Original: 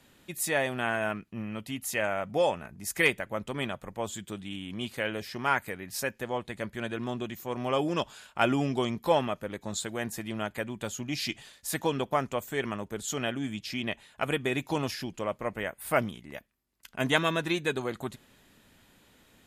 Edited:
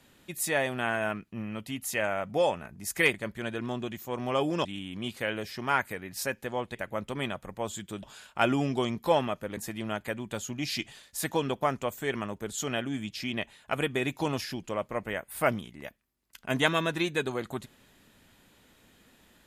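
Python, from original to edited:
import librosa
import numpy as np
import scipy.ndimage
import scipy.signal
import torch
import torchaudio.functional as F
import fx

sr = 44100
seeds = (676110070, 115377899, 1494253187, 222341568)

y = fx.edit(x, sr, fx.swap(start_s=3.14, length_s=1.28, other_s=6.52, other_length_s=1.51),
    fx.cut(start_s=9.57, length_s=0.5), tone=tone)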